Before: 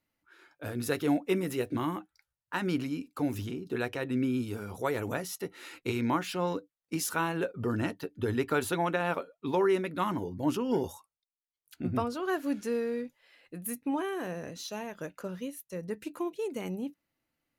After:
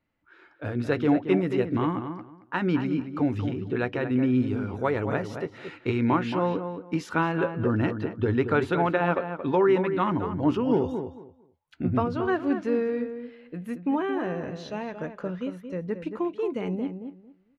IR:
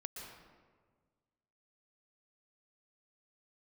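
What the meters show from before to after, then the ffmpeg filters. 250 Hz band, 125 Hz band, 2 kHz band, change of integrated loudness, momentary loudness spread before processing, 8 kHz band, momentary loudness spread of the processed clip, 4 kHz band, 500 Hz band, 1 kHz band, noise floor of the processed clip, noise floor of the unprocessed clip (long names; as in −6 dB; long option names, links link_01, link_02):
+6.5 dB, +7.5 dB, +4.0 dB, +6.0 dB, 10 LU, below −10 dB, 11 LU, −1.0 dB, +6.0 dB, +5.0 dB, −62 dBFS, below −85 dBFS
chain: -filter_complex "[0:a]lowpass=2700,lowshelf=frequency=200:gain=3.5,asplit=2[link_01][link_02];[link_02]adelay=225,lowpass=frequency=2000:poles=1,volume=-8dB,asplit=2[link_03][link_04];[link_04]adelay=225,lowpass=frequency=2000:poles=1,volume=0.2,asplit=2[link_05][link_06];[link_06]adelay=225,lowpass=frequency=2000:poles=1,volume=0.2[link_07];[link_03][link_05][link_07]amix=inputs=3:normalize=0[link_08];[link_01][link_08]amix=inputs=2:normalize=0,volume=4.5dB"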